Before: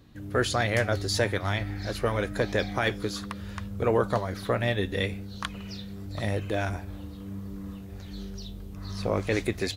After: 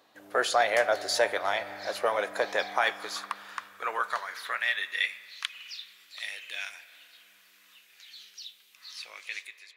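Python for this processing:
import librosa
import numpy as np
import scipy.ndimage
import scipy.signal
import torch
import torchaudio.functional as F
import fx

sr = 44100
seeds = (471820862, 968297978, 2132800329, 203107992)

y = fx.fade_out_tail(x, sr, length_s=0.88)
y = fx.rev_spring(y, sr, rt60_s=3.7, pass_ms=(40,), chirp_ms=50, drr_db=15.5)
y = fx.filter_sweep_highpass(y, sr, from_hz=680.0, to_hz=2500.0, start_s=2.28, end_s=5.59, q=1.9)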